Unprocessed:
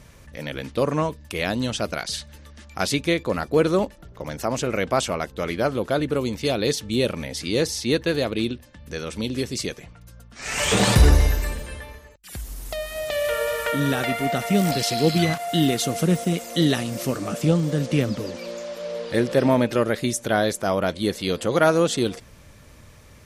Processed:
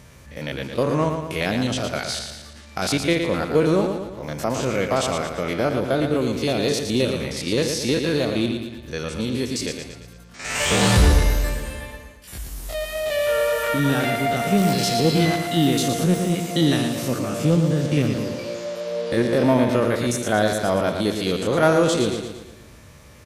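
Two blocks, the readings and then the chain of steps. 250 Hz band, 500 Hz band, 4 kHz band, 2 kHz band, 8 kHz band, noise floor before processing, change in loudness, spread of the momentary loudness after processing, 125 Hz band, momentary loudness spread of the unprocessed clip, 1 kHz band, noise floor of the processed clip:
+2.0 dB, +1.5 dB, +1.5 dB, +1.5 dB, +1.0 dB, −48 dBFS, +1.5 dB, 12 LU, +1.5 dB, 14 LU, +1.5 dB, −45 dBFS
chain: spectrum averaged block by block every 50 ms
high-pass filter 47 Hz
repeating echo 114 ms, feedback 49%, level −7 dB
in parallel at −7 dB: soft clipping −22.5 dBFS, distortion −8 dB

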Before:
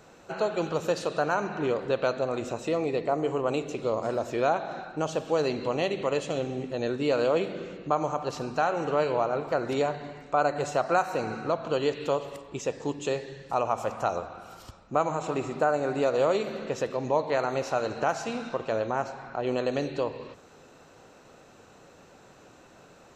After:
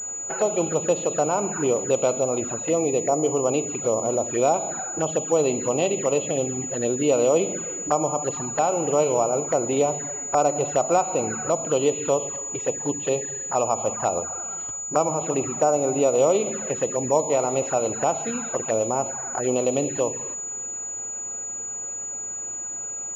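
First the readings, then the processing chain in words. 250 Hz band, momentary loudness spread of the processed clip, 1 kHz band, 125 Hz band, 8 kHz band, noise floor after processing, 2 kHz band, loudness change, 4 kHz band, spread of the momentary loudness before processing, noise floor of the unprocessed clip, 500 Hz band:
+5.0 dB, 8 LU, +3.5 dB, +3.5 dB, +23.5 dB, −32 dBFS, −2.0 dB, +5.0 dB, 0.0 dB, 7 LU, −54 dBFS, +5.0 dB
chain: low-shelf EQ 150 Hz −6 dB
flanger swept by the level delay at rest 10.9 ms, full sweep at −26 dBFS
switching amplifier with a slow clock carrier 6,900 Hz
level +7 dB

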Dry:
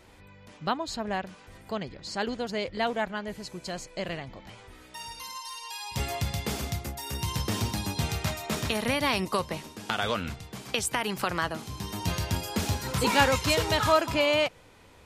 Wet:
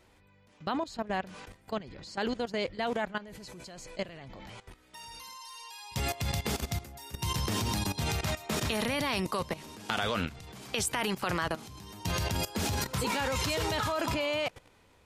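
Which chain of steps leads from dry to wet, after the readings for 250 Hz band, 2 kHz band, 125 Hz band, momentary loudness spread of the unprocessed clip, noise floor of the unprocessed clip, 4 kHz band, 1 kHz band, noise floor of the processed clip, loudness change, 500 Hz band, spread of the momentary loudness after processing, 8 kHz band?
−2.5 dB, −4.0 dB, −3.0 dB, 15 LU, −53 dBFS, −3.5 dB, −4.5 dB, −62 dBFS, −3.0 dB, −4.5 dB, 16 LU, −2.0 dB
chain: transient designer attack −1 dB, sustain +6 dB
output level in coarse steps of 16 dB
level +1.5 dB

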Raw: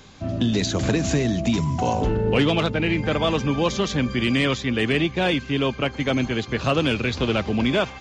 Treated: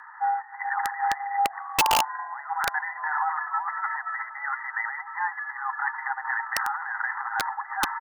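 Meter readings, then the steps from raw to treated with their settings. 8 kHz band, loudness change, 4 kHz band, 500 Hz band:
−1.5 dB, −5.5 dB, −8.5 dB, −21.0 dB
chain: notch filter 1,000 Hz, Q 15
compressor whose output falls as the input rises −24 dBFS, ratio −0.5
linear-phase brick-wall band-pass 630–1,900 Hz
frequency shifter +140 Hz
echo with shifted repeats 402 ms, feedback 60%, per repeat −36 Hz, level −23 dB
wrap-around overflow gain 22.5 dB
level +8 dB

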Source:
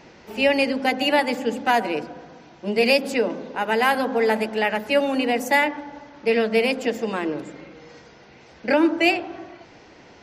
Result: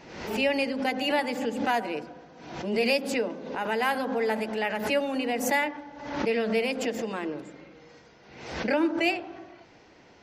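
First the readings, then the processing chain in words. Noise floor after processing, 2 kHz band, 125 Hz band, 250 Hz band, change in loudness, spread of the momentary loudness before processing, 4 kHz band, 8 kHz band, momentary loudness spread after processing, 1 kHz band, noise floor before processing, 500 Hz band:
−55 dBFS, −6.5 dB, −3.0 dB, −5.5 dB, −6.5 dB, 15 LU, −6.0 dB, −1.0 dB, 14 LU, −6.5 dB, −49 dBFS, −6.0 dB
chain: background raised ahead of every attack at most 63 dB per second
level −7 dB

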